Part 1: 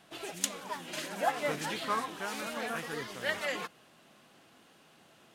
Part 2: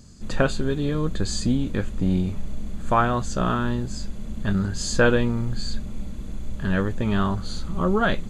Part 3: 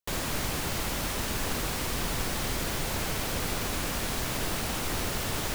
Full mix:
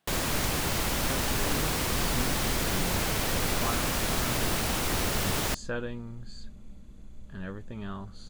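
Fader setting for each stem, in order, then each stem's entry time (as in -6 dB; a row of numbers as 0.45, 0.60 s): -15.0, -15.5, +2.5 dB; 0.00, 0.70, 0.00 s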